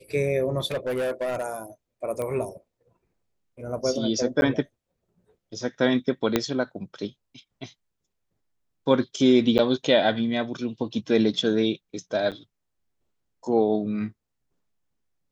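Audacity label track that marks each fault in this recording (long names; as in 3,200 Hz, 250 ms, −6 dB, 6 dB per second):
0.660000	1.450000	clipping −23.5 dBFS
2.220000	2.220000	click −20 dBFS
4.410000	4.420000	drop-out 11 ms
6.360000	6.360000	click −6 dBFS
9.580000	9.590000	drop-out 9.5 ms
12.310000	12.320000	drop-out 7.8 ms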